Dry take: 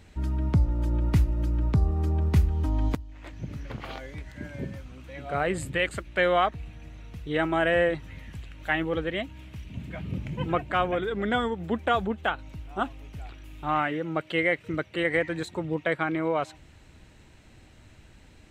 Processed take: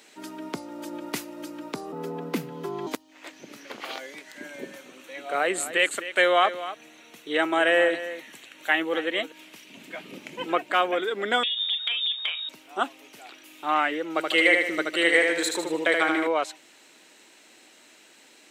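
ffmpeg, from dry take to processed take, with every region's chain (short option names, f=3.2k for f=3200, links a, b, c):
-filter_complex "[0:a]asettb=1/sr,asplit=3[a][b][c];[a]atrim=end=1.924[d];[b]atrim=start=1.92:end=2.87,asetpts=PTS-STARTPTS,afade=t=in:d=0.004:c=qsin,afade=t=out:st=0.946:d=0.004:c=qsin,equalizer=f=8k:w=0.48:g=-8.5,afreqshift=89[e];[c]atrim=start=2.866[f];[d][e]acrossfade=d=0.004:c1=hsin:c2=qsin[g];[g][f]acrossfade=d=0.004:c1=qsin:c2=hsin,asettb=1/sr,asplit=3[h][i][j];[h]atrim=end=4.414[k];[i]atrim=start=4.41:end=9.32,asetpts=PTS-STARTPTS,afade=t=in:d=0.004:c=qsin,afade=t=out:st=4.906:d=0.004:c=qsin,bandreject=f=4.9k:w=6.9,aecho=1:1:257:0.211,atrim=end_sample=216531[l];[j]atrim=start=9.316[m];[k][l]acrossfade=d=0.004:c1=hsin:c2=qsin[n];[n][m]acrossfade=d=0.004:c1=qsin:c2=hsin,asettb=1/sr,asplit=3[o][p][q];[o]atrim=end=11.434[r];[p]atrim=start=11.43:end=12.49,asetpts=PTS-STARTPTS,afade=t=in:d=0.004:c=qsin,afade=t=out:st=1.056:d=0.004:c=qsin,lowpass=f=3.2k:t=q:w=0.5098,lowpass=f=3.2k:t=q:w=0.6013,lowpass=f=3.2k:t=q:w=0.9,lowpass=f=3.2k:t=q:w=2.563,afreqshift=-3800,acompressor=threshold=-30dB:ratio=12:attack=3.2:release=140:knee=1:detection=peak,asplit=2[s][t];[t]adelay=39,volume=-12.5dB[u];[s][u]amix=inputs=2:normalize=0,atrim=end_sample=46746[v];[q]atrim=start=12.486[w];[r][v]acrossfade=d=0.004:c1=hsin:c2=qsin[x];[x][w]acrossfade=d=0.004:c1=qsin:c2=hsin,asettb=1/sr,asplit=3[y][z][aa];[y]atrim=end=14.104[ab];[z]atrim=start=14.1:end=16.27,asetpts=PTS-STARTPTS,afade=t=in:d=0.004:c=qsin,afade=t=out:st=2.166:d=0.004:c=qsin,highshelf=f=3.7k:g=6.5,aecho=1:1:77|154|231|308|385|462:0.631|0.29|0.134|0.0614|0.0283|0.013,atrim=end_sample=95697[ac];[aa]atrim=start=16.266[ad];[ab][ac]acrossfade=d=0.004:c1=hsin:c2=qsin[ae];[ae][ad]acrossfade=d=0.004:c1=qsin:c2=hsin,highpass=f=290:w=0.5412,highpass=f=290:w=1.3066,highshelf=f=2.9k:g=10.5,volume=1.5dB"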